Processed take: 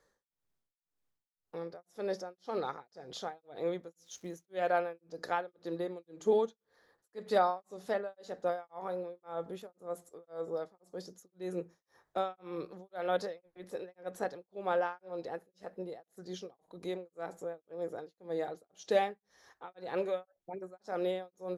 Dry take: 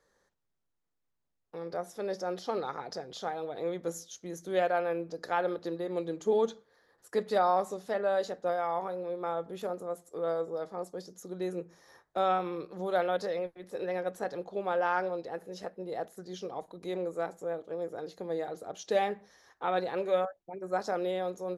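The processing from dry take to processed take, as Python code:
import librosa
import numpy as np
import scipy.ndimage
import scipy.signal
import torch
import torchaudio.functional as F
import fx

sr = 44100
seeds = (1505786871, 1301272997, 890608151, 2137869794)

y = fx.dmg_crackle(x, sr, seeds[0], per_s=400.0, level_db=-53.0, at=(3.89, 4.48), fade=0.02)
y = y * (1.0 - 1.0 / 2.0 + 1.0 / 2.0 * np.cos(2.0 * np.pi * 1.9 * (np.arange(len(y)) / sr)))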